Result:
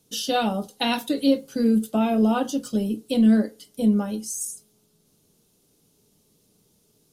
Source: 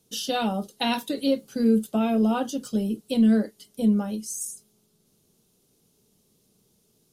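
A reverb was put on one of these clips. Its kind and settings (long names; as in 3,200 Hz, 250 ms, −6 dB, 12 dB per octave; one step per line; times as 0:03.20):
feedback delay network reverb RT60 0.33 s, low-frequency decay 0.85×, high-frequency decay 0.6×, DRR 10.5 dB
level +2 dB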